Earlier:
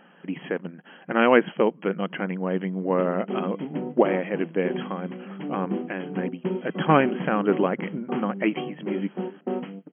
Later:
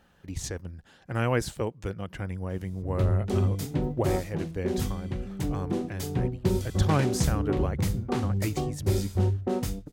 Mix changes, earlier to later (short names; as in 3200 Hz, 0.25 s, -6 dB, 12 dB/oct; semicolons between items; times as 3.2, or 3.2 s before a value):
speech -10.0 dB; master: remove brick-wall FIR band-pass 160–3300 Hz